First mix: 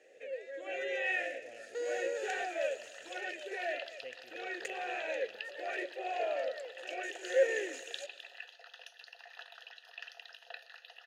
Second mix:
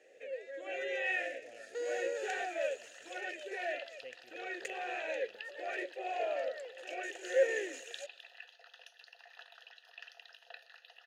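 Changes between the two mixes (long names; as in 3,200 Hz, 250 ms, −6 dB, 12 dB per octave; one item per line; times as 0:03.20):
speech: send −11.5 dB
first sound: send −10.0 dB
second sound −4.0 dB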